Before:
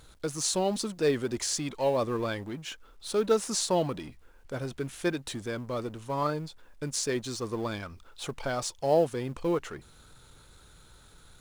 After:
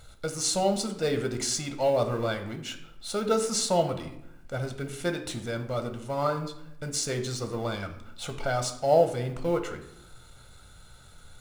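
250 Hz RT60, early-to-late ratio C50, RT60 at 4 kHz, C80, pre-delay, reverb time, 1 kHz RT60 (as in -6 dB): 1.1 s, 10.5 dB, 0.55 s, 13.0 dB, 6 ms, 0.80 s, 0.75 s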